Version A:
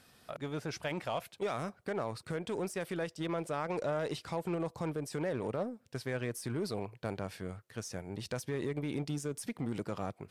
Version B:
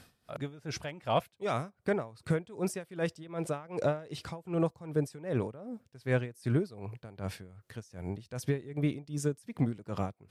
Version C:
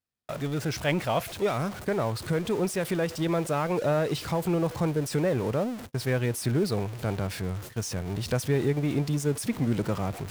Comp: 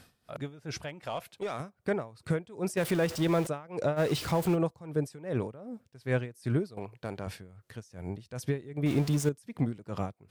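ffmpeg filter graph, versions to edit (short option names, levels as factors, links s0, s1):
-filter_complex "[0:a]asplit=2[s0][s1];[2:a]asplit=3[s2][s3][s4];[1:a]asplit=6[s5][s6][s7][s8][s9][s10];[s5]atrim=end=1.032[s11];[s0]atrim=start=1.028:end=1.602[s12];[s6]atrim=start=1.598:end=2.772[s13];[s2]atrim=start=2.768:end=3.472[s14];[s7]atrim=start=3.468:end=4[s15];[s3]atrim=start=3.96:end=4.57[s16];[s8]atrim=start=4.53:end=6.772[s17];[s1]atrim=start=6.768:end=7.272[s18];[s9]atrim=start=7.268:end=8.862[s19];[s4]atrim=start=8.858:end=9.292[s20];[s10]atrim=start=9.288[s21];[s11][s12]acrossfade=d=0.004:c1=hsin:c2=hsin[s22];[s22][s13]acrossfade=d=0.004:c1=hsin:c2=hsin[s23];[s23][s14]acrossfade=d=0.004:c1=hsin:c2=hsin[s24];[s24][s15]acrossfade=d=0.004:c1=hsin:c2=hsin[s25];[s25][s16]acrossfade=d=0.04:c1=tri:c2=tri[s26];[s26][s17]acrossfade=d=0.04:c1=tri:c2=tri[s27];[s27][s18]acrossfade=d=0.004:c1=hsin:c2=hsin[s28];[s28][s19]acrossfade=d=0.004:c1=hsin:c2=hsin[s29];[s29][s20]acrossfade=d=0.004:c1=hsin:c2=hsin[s30];[s30][s21]acrossfade=d=0.004:c1=hsin:c2=hsin"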